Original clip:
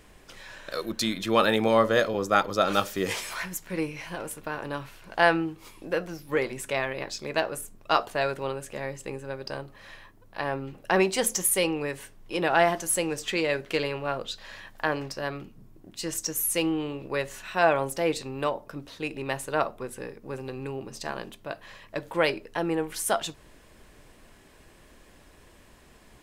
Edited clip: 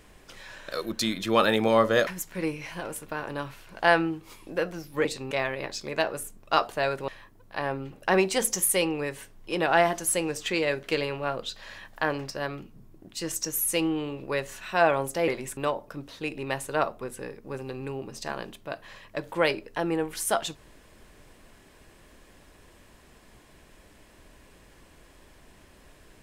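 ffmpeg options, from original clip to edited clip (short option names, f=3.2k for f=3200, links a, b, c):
-filter_complex "[0:a]asplit=7[a][b][c][d][e][f][g];[a]atrim=end=2.072[h];[b]atrim=start=3.418:end=6.402[i];[c]atrim=start=18.098:end=18.362[j];[d]atrim=start=6.688:end=8.462[k];[e]atrim=start=9.898:end=18.102[l];[f]atrim=start=6.398:end=6.692[m];[g]atrim=start=18.358[n];[h][i]acrossfade=d=0.004:c1=hsin:c2=hsin[o];[o][j]acrossfade=d=0.004:c1=hsin:c2=hsin[p];[p][k]acrossfade=d=0.004:c1=hsin:c2=hsin[q];[q][l]acrossfade=d=0.004:c1=hsin:c2=hsin[r];[r][m]acrossfade=d=0.004:c1=hsin:c2=hsin[s];[s][n]acrossfade=d=0.004:c1=hsin:c2=hsin"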